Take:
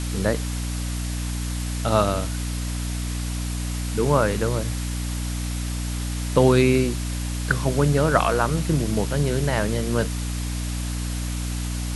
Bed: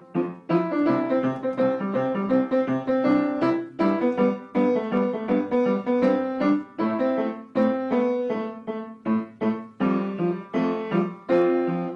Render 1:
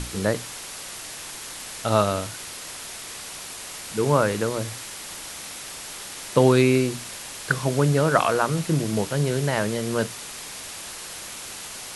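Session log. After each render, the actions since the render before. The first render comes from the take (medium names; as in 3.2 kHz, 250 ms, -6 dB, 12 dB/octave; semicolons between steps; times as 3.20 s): hum notches 60/120/180/240/300 Hz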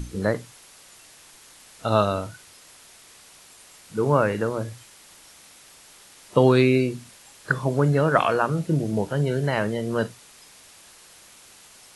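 noise print and reduce 13 dB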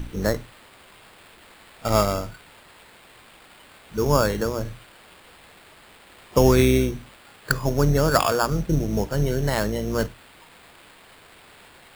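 octave divider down 2 oct, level -4 dB; sample-rate reducer 6 kHz, jitter 0%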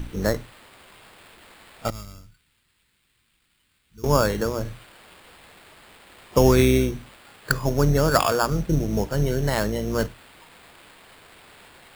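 1.90–4.04 s: amplifier tone stack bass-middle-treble 6-0-2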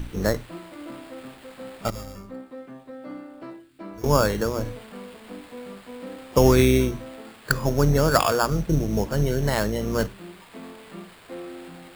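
add bed -17.5 dB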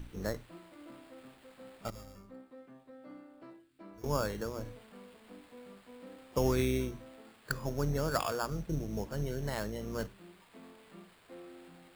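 trim -13 dB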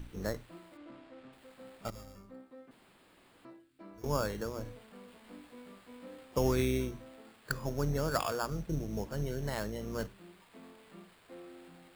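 0.77–1.33 s: distance through air 110 m; 2.71–3.45 s: room tone; 5.06–6.25 s: doubling 17 ms -4.5 dB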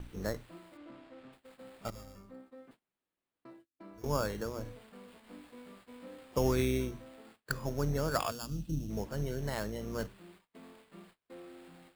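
8.31–8.90 s: time-frequency box 330–2500 Hz -13 dB; gate -57 dBFS, range -30 dB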